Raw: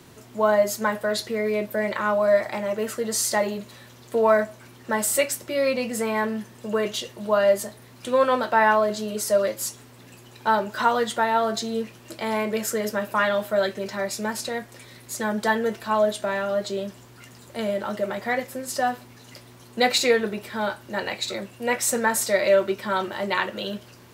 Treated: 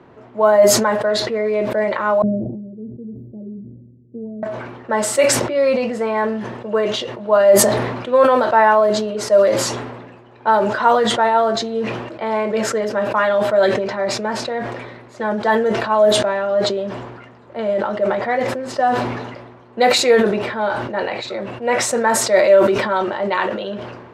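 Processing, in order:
0:02.22–0:04.43: inverse Chebyshev band-stop filter 1,100–9,000 Hz, stop band 70 dB
low-pass that shuts in the quiet parts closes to 2,100 Hz, open at −15.5 dBFS
parametric band 650 Hz +10 dB 2.8 octaves
level that may fall only so fast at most 42 dB per second
level −3 dB

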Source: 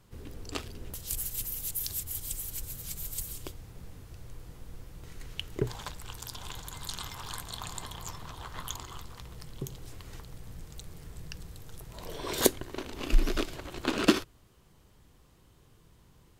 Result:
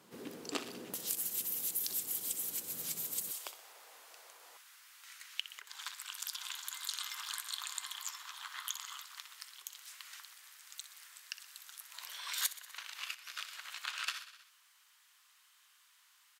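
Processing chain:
repeating echo 62 ms, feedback 52%, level −13.5 dB
downward compressor 2.5 to 1, threshold −38 dBFS, peak gain reduction 15.5 dB
high-pass filter 200 Hz 24 dB per octave, from 0:03.31 640 Hz, from 0:04.57 1,300 Hz
level +3.5 dB

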